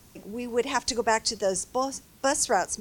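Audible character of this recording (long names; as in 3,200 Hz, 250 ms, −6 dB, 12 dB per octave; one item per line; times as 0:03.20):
background noise floor −55 dBFS
spectral slope −1.5 dB per octave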